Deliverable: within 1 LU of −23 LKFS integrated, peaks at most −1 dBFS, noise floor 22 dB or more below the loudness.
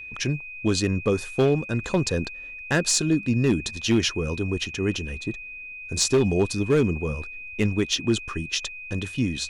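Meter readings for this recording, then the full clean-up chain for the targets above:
share of clipped samples 0.6%; peaks flattened at −13.5 dBFS; interfering tone 2,500 Hz; level of the tone −36 dBFS; integrated loudness −24.5 LKFS; sample peak −13.5 dBFS; target loudness −23.0 LKFS
→ clipped peaks rebuilt −13.5 dBFS
notch filter 2,500 Hz, Q 30
level +1.5 dB

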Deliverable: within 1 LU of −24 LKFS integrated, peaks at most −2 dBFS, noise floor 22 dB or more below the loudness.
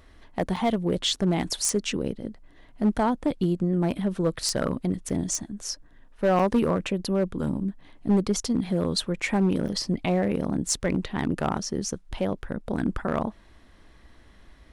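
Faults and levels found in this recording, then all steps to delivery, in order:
share of clipped samples 0.9%; peaks flattened at −16.0 dBFS; number of dropouts 4; longest dropout 5.1 ms; integrated loudness −26.5 LKFS; sample peak −16.0 dBFS; target loudness −24.0 LKFS
→ clipped peaks rebuilt −16 dBFS
repair the gap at 0:00.56/0:05.09/0:06.39/0:09.68, 5.1 ms
level +2.5 dB

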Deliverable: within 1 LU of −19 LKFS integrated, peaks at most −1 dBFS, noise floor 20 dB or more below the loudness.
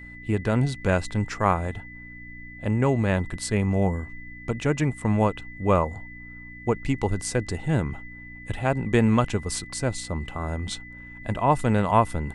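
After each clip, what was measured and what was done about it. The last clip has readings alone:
mains hum 60 Hz; hum harmonics up to 300 Hz; level of the hum −46 dBFS; interfering tone 2,000 Hz; level of the tone −42 dBFS; integrated loudness −25.5 LKFS; sample peak −6.0 dBFS; target loudness −19.0 LKFS
→ hum removal 60 Hz, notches 5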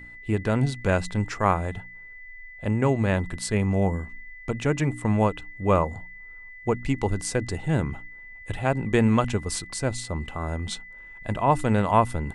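mains hum none found; interfering tone 2,000 Hz; level of the tone −42 dBFS
→ notch filter 2,000 Hz, Q 30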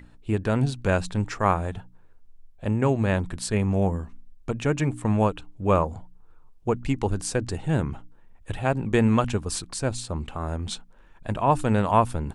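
interfering tone none found; integrated loudness −25.5 LKFS; sample peak −6.0 dBFS; target loudness −19.0 LKFS
→ level +6.5 dB
brickwall limiter −1 dBFS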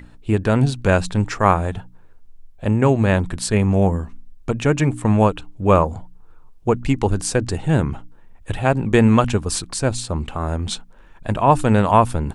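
integrated loudness −19.0 LKFS; sample peak −1.0 dBFS; background noise floor −45 dBFS

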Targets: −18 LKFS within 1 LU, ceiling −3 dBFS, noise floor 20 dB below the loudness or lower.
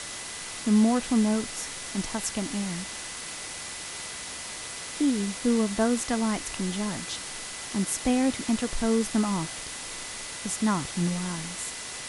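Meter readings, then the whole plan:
interfering tone 2,000 Hz; level of the tone −47 dBFS; background noise floor −38 dBFS; target noise floor −49 dBFS; integrated loudness −28.5 LKFS; sample peak −11.5 dBFS; target loudness −18.0 LKFS
→ notch filter 2,000 Hz, Q 30
noise reduction from a noise print 11 dB
level +10.5 dB
brickwall limiter −3 dBFS

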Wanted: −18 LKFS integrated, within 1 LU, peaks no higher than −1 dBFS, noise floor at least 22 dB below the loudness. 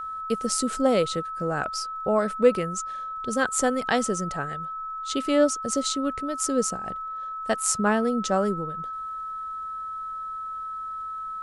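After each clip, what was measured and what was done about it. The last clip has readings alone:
crackle rate 48 per second; interfering tone 1,300 Hz; level of the tone −31 dBFS; integrated loudness −26.5 LKFS; sample peak −6.0 dBFS; target loudness −18.0 LKFS
→ click removal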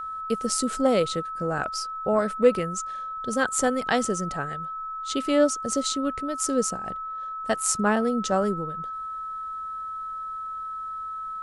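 crackle rate 0.26 per second; interfering tone 1,300 Hz; level of the tone −31 dBFS
→ notch filter 1,300 Hz, Q 30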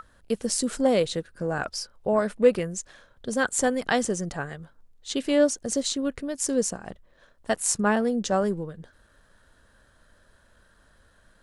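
interfering tone none found; integrated loudness −26.0 LKFS; sample peak −6.5 dBFS; target loudness −18.0 LKFS
→ level +8 dB
brickwall limiter −1 dBFS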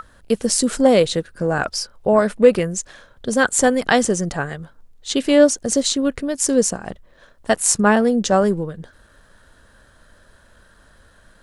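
integrated loudness −18.0 LKFS; sample peak −1.0 dBFS; background noise floor −53 dBFS

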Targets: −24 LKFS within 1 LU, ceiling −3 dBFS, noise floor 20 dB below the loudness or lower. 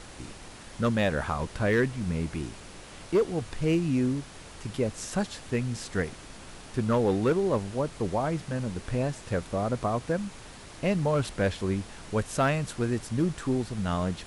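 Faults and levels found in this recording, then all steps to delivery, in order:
share of clipped samples 0.4%; peaks flattened at −17.5 dBFS; background noise floor −46 dBFS; target noise floor −49 dBFS; integrated loudness −29.0 LKFS; sample peak −17.5 dBFS; target loudness −24.0 LKFS
→ clipped peaks rebuilt −17.5 dBFS
noise reduction from a noise print 6 dB
level +5 dB

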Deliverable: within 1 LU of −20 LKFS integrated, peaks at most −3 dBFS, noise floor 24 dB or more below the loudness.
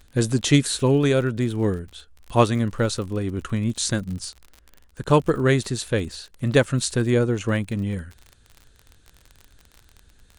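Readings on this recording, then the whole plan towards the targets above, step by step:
crackle rate 38 per second; integrated loudness −22.5 LKFS; sample peak −3.0 dBFS; target loudness −20.0 LKFS
→ click removal
level +2.5 dB
brickwall limiter −3 dBFS

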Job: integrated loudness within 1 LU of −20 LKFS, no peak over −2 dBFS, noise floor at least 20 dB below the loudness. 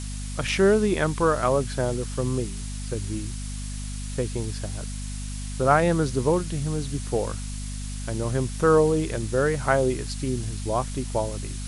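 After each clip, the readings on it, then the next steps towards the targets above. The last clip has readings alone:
mains hum 50 Hz; hum harmonics up to 250 Hz; level of the hum −30 dBFS; background noise floor −33 dBFS; target noise floor −46 dBFS; integrated loudness −25.5 LKFS; sample peak −5.5 dBFS; target loudness −20.0 LKFS
→ hum removal 50 Hz, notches 5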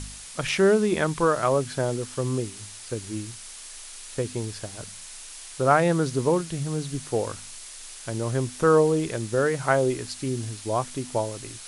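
mains hum none found; background noise floor −42 dBFS; target noise floor −46 dBFS
→ broadband denoise 6 dB, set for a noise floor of −42 dBFS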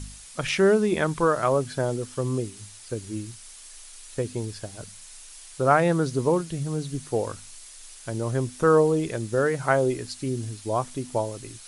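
background noise floor −46 dBFS; integrated loudness −25.5 LKFS; sample peak −6.0 dBFS; target loudness −20.0 LKFS
→ level +5.5 dB
brickwall limiter −2 dBFS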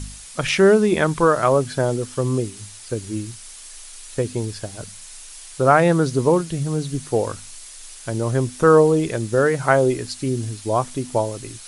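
integrated loudness −20.0 LKFS; sample peak −2.0 dBFS; background noise floor −40 dBFS

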